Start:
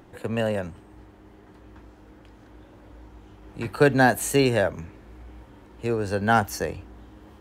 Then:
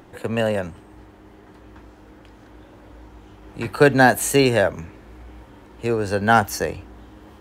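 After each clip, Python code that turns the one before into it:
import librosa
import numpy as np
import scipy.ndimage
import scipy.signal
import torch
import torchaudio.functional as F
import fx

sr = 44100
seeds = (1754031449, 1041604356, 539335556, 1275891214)

y = fx.low_shelf(x, sr, hz=320.0, db=-3.0)
y = y * 10.0 ** (5.0 / 20.0)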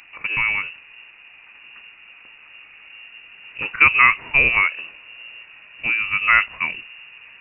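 y = fx.freq_invert(x, sr, carrier_hz=2800)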